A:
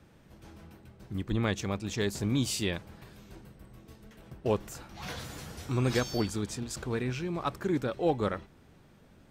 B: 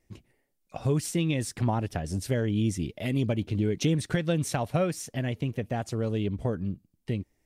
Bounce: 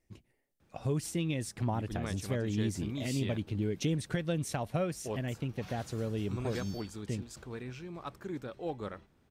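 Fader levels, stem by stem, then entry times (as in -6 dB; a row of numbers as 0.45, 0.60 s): -10.0, -6.0 dB; 0.60, 0.00 s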